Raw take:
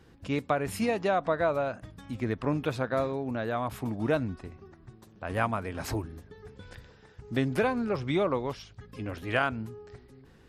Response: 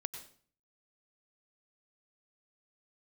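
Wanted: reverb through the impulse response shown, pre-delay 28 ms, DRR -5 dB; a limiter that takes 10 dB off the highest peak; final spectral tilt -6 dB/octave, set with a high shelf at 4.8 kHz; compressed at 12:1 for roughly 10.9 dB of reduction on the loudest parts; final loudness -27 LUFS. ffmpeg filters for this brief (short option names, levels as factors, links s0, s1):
-filter_complex "[0:a]highshelf=f=4800:g=-6,acompressor=threshold=0.0224:ratio=12,alimiter=level_in=1.88:limit=0.0631:level=0:latency=1,volume=0.531,asplit=2[s0][s1];[1:a]atrim=start_sample=2205,adelay=28[s2];[s1][s2]afir=irnorm=-1:irlink=0,volume=2[s3];[s0][s3]amix=inputs=2:normalize=0,volume=2.66"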